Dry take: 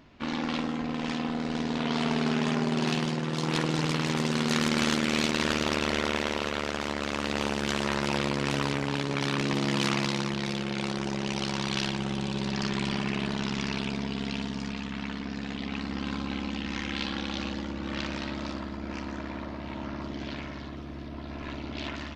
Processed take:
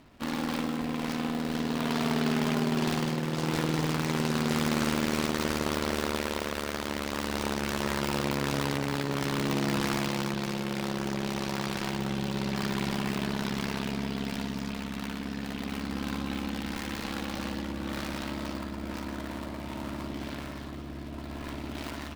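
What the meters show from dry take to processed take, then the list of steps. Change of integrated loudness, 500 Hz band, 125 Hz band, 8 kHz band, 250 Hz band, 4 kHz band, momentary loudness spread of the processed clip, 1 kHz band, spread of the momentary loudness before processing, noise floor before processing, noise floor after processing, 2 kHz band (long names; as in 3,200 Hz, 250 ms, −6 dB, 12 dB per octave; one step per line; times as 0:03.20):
−1.5 dB, −0.5 dB, −0.5 dB, −0.5 dB, −0.5 dB, −3.5 dB, 9 LU, −0.5 dB, 10 LU, −38 dBFS, −39 dBFS, −2.5 dB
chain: gap after every zero crossing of 0.21 ms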